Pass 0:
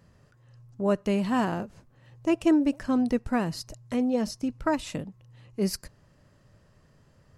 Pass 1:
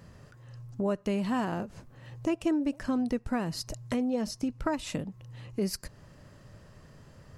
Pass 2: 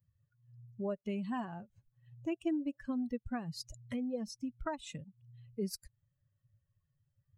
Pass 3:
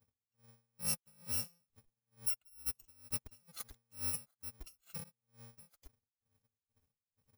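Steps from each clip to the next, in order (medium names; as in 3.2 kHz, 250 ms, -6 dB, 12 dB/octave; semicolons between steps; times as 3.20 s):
compression 2.5:1, threshold -39 dBFS, peak gain reduction 14 dB; trim +7 dB
expander on every frequency bin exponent 2; trim -4.5 dB
bit-reversed sample order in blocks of 128 samples; logarithmic tremolo 2.2 Hz, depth 33 dB; trim +2 dB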